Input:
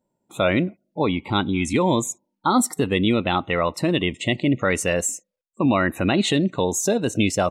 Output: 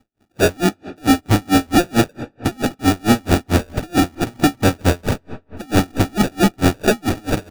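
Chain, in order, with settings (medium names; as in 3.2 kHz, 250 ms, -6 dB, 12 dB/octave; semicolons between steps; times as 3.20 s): tone controls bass +13 dB, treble +1 dB; comb 3.1 ms, depth 95%; dynamic bell 280 Hz, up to +5 dB, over -24 dBFS, Q 3; sample-and-hold 42×; overload inside the chain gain 17 dB; on a send at -14.5 dB: reverberation RT60 2.9 s, pre-delay 15 ms; on the sum: logarithmic tremolo 4.5 Hz, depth 35 dB; trim +9 dB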